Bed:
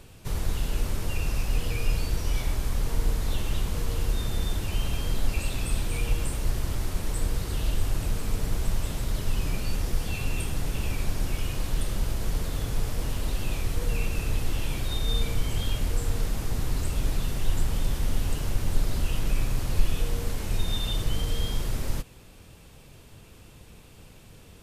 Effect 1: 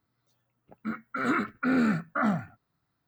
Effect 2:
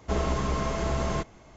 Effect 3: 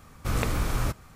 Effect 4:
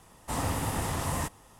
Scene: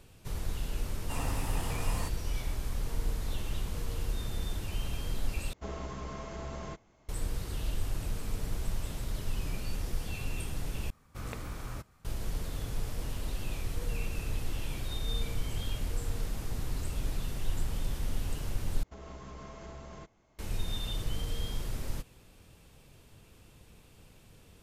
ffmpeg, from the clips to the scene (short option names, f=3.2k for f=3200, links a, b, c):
-filter_complex "[2:a]asplit=2[a][b];[0:a]volume=-7dB[c];[4:a]acrusher=bits=10:mix=0:aa=0.000001[d];[b]alimiter=limit=-21dB:level=0:latency=1:release=153[e];[c]asplit=4[f][g][h][i];[f]atrim=end=5.534[j];[a]atrim=end=1.56,asetpts=PTS-STARTPTS,volume=-12.5dB[k];[g]atrim=start=7.086:end=10.904[l];[3:a]atrim=end=1.15,asetpts=PTS-STARTPTS,volume=-13dB[m];[h]atrim=start=12.046:end=18.834[n];[e]atrim=end=1.56,asetpts=PTS-STARTPTS,volume=-15.5dB[o];[i]atrim=start=20.386[p];[d]atrim=end=1.59,asetpts=PTS-STARTPTS,volume=-7.5dB,afade=t=in:d=0.004:c=hsin,afade=t=out:st=1.586:d=0.004:c=hsin,adelay=810[q];[j][k]acrossfade=d=0.004:c1=hsin:c2=hsin[r];[r][l]acrossfade=d=0.004:c1=hsin:c2=hsin[s];[s][m]acrossfade=d=0.004:c1=hsin:c2=hsin[t];[t][n]acrossfade=d=0.004:c1=hsin:c2=hsin[u];[u][o]acrossfade=d=0.004:c1=hsin:c2=hsin[v];[v][p]acrossfade=d=0.004:c1=hsin:c2=hsin[w];[w][q]amix=inputs=2:normalize=0"